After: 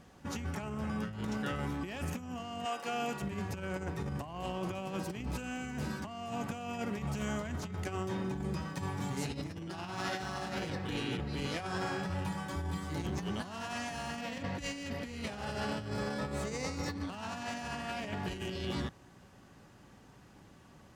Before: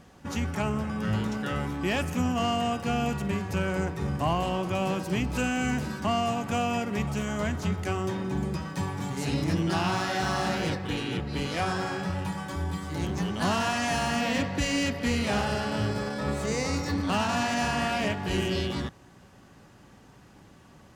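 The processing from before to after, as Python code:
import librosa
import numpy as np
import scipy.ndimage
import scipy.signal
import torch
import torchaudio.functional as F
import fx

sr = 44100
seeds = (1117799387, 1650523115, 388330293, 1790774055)

y = fx.highpass(x, sr, hz=fx.line((2.64, 650.0), (3.21, 240.0)), slope=12, at=(2.64, 3.21), fade=0.02)
y = fx.over_compress(y, sr, threshold_db=-30.0, ratio=-0.5)
y = y * 10.0 ** (-6.5 / 20.0)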